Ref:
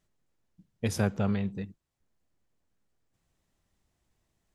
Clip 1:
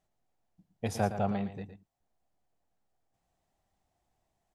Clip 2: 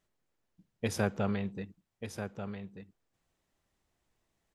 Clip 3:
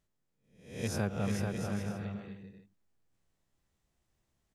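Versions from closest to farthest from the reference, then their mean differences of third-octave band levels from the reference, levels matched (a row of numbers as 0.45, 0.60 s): 2, 1, 3; 2.0, 3.5, 9.5 dB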